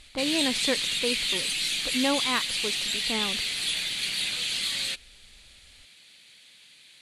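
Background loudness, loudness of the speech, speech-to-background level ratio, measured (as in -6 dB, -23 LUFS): -26.5 LUFS, -31.0 LUFS, -4.5 dB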